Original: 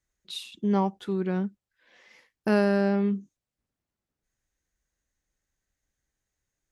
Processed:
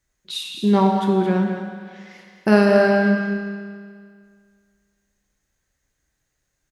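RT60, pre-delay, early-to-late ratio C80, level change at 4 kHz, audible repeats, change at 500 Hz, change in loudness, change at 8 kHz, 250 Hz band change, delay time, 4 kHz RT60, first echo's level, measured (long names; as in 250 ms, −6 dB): 2.0 s, 6 ms, 3.0 dB, +9.5 dB, 1, +9.5 dB, +8.5 dB, can't be measured, +8.0 dB, 218 ms, 1.8 s, −10.0 dB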